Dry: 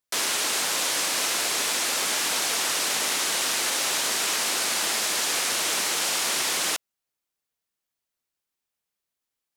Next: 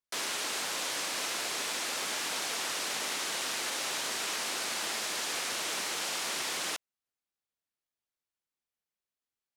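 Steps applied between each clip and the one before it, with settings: high shelf 7500 Hz -6.5 dB; gain -7 dB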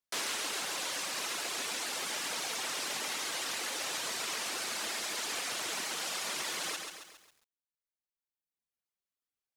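reverb removal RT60 1.8 s; lo-fi delay 0.136 s, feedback 55%, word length 10-bit, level -5 dB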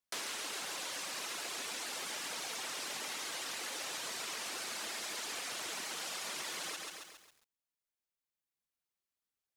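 compressor 2.5:1, threshold -40 dBFS, peak gain reduction 6 dB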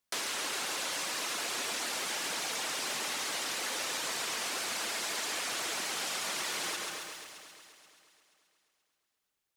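in parallel at -8.5 dB: hard clip -39.5 dBFS, distortion -12 dB; on the sum: echo with dull and thin repeats by turns 0.24 s, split 2500 Hz, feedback 57%, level -6 dB; gain +3 dB

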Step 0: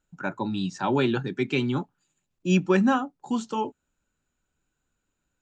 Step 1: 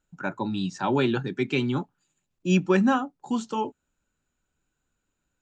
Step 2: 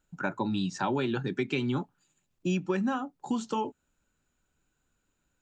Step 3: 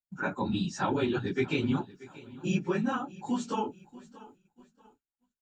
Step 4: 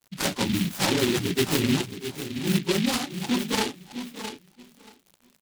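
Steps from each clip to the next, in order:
nothing audible
compressor 6:1, threshold -28 dBFS, peak gain reduction 11.5 dB; gain +2 dB
phase scrambler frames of 50 ms; feedback echo 0.633 s, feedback 44%, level -19.5 dB; expander -52 dBFS
crackle 90/s -44 dBFS; echo 0.666 s -10.5 dB; noise-modulated delay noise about 2800 Hz, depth 0.19 ms; gain +5 dB

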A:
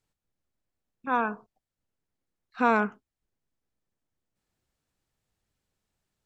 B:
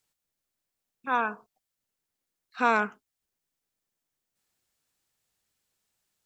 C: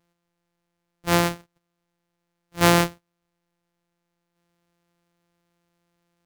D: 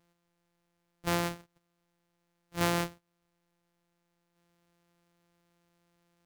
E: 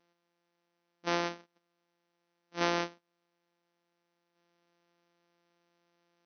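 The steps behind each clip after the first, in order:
tilt +2.5 dB/oct
sample sorter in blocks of 256 samples; gain +6.5 dB
compressor 2.5:1, threshold -31 dBFS, peak gain reduction 13 dB
brick-wall FIR band-pass 180–6300 Hz

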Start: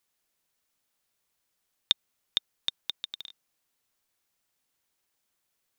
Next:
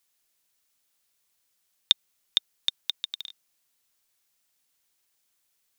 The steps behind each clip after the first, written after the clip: high shelf 2100 Hz +8 dB; gain -2 dB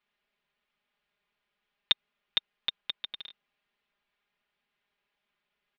LPF 3000 Hz 24 dB/oct; comb 4.9 ms, depth 89%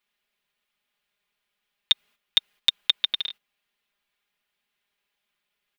gate -54 dBFS, range -10 dB; high shelf 3500 Hz +12 dB; limiter -12 dBFS, peak gain reduction 9.5 dB; gain +8 dB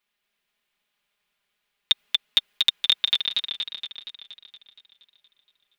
warbling echo 0.235 s, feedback 60%, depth 51 cents, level -3 dB

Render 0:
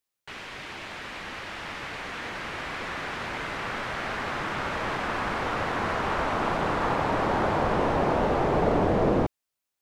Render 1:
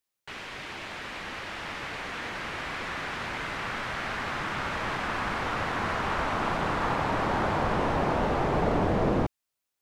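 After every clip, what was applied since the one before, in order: dynamic EQ 470 Hz, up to -4 dB, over -38 dBFS, Q 0.81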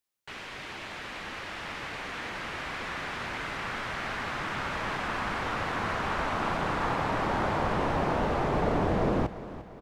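feedback echo 0.348 s, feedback 48%, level -15 dB; gain -1.5 dB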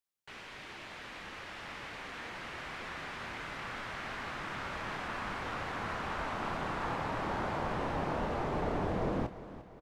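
doubler 26 ms -11 dB; gain -7 dB

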